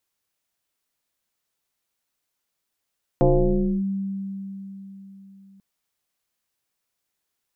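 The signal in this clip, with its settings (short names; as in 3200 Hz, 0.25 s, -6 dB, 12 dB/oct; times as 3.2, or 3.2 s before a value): FM tone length 2.39 s, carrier 195 Hz, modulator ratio 0.85, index 2.9, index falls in 0.62 s linear, decay 4.00 s, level -12.5 dB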